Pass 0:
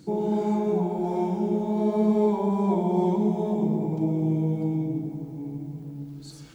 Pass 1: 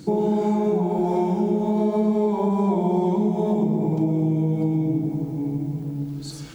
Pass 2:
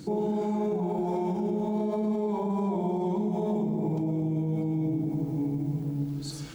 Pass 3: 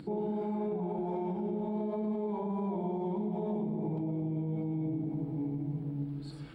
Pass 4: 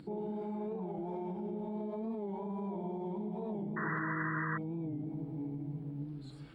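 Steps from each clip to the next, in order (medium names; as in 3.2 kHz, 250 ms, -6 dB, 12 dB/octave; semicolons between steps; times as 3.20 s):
compression 4:1, threshold -27 dBFS, peak gain reduction 8.5 dB; trim +8.5 dB
peak limiter -19.5 dBFS, peak gain reduction 8.5 dB; trim -2 dB
upward compressor, threshold -39 dBFS; boxcar filter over 7 samples; trim -5.5 dB
painted sound noise, 3.76–4.58 s, 950–2000 Hz -33 dBFS; warped record 45 rpm, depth 100 cents; trim -5 dB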